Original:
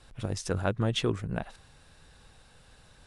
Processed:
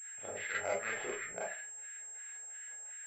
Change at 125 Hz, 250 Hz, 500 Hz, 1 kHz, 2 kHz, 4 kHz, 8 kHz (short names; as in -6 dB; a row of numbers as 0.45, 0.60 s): -30.0, -20.5, -6.5, -4.5, +2.5, -15.0, +6.0 dB